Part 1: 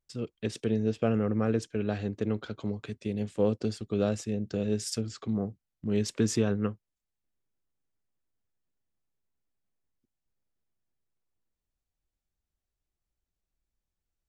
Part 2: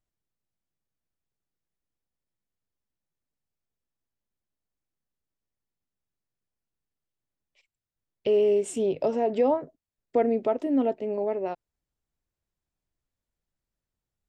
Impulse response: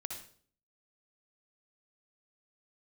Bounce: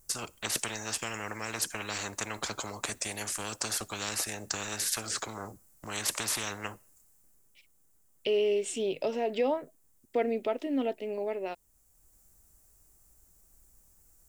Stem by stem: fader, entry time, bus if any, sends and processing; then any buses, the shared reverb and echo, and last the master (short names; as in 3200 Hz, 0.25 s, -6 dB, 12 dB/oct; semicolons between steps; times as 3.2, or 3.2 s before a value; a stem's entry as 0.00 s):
-1.5 dB, 0.00 s, send -23 dB, EQ curve 1300 Hz 0 dB, 3500 Hz -11 dB, 7500 Hz +12 dB; spectral compressor 10:1; auto duck -8 dB, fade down 0.60 s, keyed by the second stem
-5.0 dB, 0.00 s, no send, weighting filter D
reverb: on, RT60 0.50 s, pre-delay 55 ms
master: dry